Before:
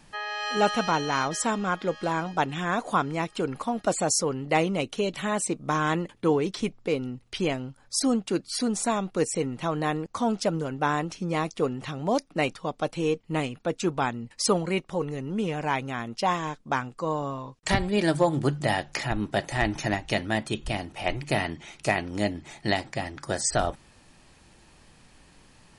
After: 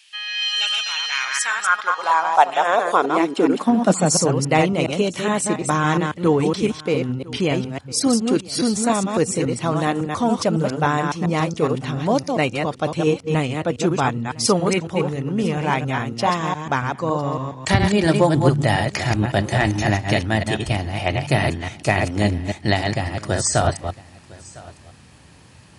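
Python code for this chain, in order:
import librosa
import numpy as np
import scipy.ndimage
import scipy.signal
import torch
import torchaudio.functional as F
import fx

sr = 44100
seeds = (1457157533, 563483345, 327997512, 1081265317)

y = fx.reverse_delay(x, sr, ms=139, wet_db=-4.5)
y = y + 10.0 ** (-21.5 / 20.0) * np.pad(y, (int(1005 * sr / 1000.0), 0))[:len(y)]
y = fx.filter_sweep_highpass(y, sr, from_hz=2900.0, to_hz=88.0, start_s=0.92, end_s=4.73, q=2.9)
y = y * librosa.db_to_amplitude(5.0)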